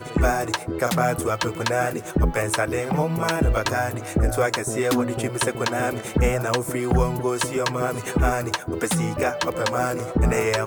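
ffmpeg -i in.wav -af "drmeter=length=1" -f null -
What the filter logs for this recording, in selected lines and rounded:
Channel 1: DR: 8.8
Overall DR: 8.8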